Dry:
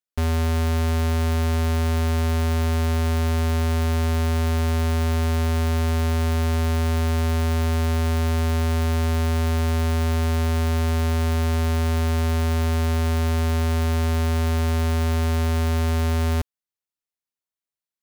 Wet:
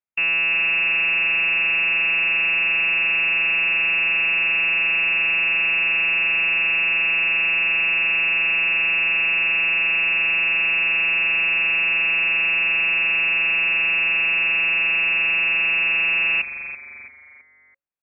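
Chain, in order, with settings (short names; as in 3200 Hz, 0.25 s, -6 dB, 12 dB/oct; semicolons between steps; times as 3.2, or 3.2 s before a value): inverted band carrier 2700 Hz; frequency-shifting echo 0.332 s, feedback 42%, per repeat -140 Hz, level -12.5 dB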